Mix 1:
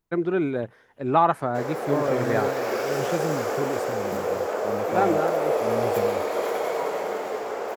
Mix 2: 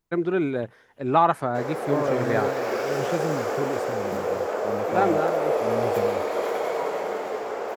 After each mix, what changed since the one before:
first voice: add high shelf 3600 Hz +7 dB; master: add high shelf 7400 Hz -6 dB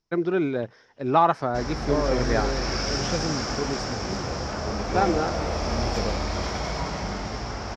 first voice: add high shelf 3600 Hz -7 dB; background: remove resonant high-pass 460 Hz, resonance Q 4.2; master: add synth low-pass 5400 Hz, resonance Q 7.9

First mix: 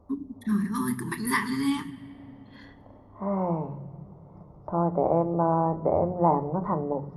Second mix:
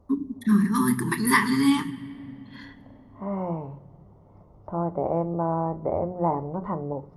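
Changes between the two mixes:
first voice +6.0 dB; second voice: send -9.0 dB

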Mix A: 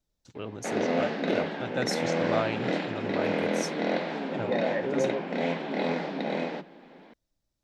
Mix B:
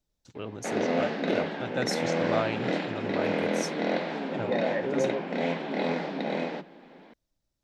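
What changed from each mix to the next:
none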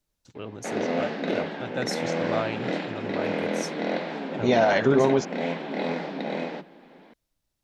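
second voice: remove vocal tract filter e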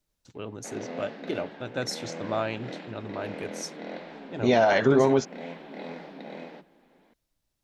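background -10.5 dB

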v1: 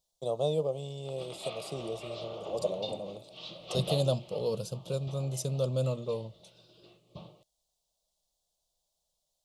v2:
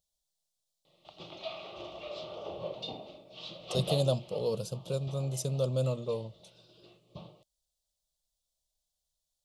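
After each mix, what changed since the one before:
first voice: muted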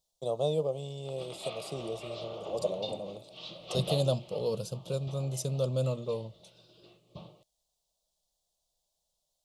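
first voice: unmuted

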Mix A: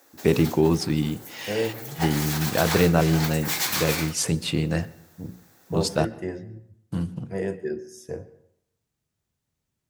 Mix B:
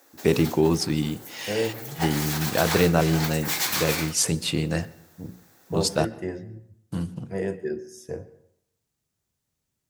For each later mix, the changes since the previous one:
first voice: add tone controls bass -2 dB, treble +4 dB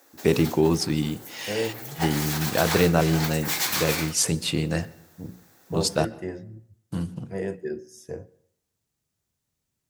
second voice: send -9.0 dB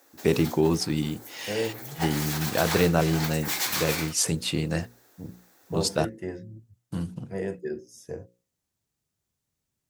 reverb: off

